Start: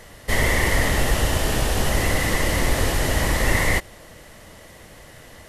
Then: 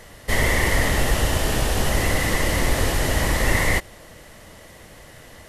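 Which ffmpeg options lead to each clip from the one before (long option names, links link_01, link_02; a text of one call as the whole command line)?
ffmpeg -i in.wav -af anull out.wav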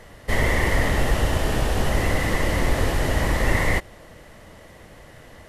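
ffmpeg -i in.wav -af "highshelf=frequency=3300:gain=-8.5" out.wav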